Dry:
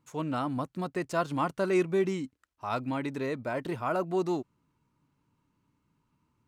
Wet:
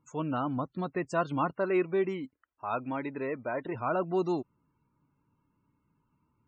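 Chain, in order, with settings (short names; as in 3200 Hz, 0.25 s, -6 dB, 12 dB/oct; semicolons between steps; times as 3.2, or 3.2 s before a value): 1.53–3.75 tone controls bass -7 dB, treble -10 dB; loudest bins only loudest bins 64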